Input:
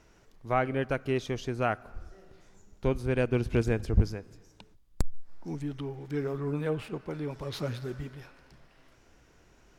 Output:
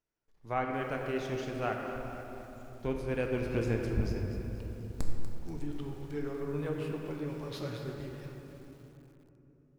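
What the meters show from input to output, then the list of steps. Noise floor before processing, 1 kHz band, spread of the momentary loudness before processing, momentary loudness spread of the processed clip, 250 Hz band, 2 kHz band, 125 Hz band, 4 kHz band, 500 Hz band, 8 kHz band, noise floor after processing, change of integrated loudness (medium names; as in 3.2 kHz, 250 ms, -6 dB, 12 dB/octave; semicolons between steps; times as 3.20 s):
-61 dBFS, -3.0 dB, 13 LU, 14 LU, -3.0 dB, -3.5 dB, -5.0 dB, -4.0 dB, -3.5 dB, -4.0 dB, -63 dBFS, -4.5 dB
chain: gate -54 dBFS, range -24 dB; bass shelf 130 Hz -4 dB; feedback comb 850 Hz, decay 0.36 s, mix 60%; simulated room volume 210 m³, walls hard, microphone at 0.42 m; bit-crushed delay 241 ms, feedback 55%, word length 9-bit, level -12 dB; trim +1.5 dB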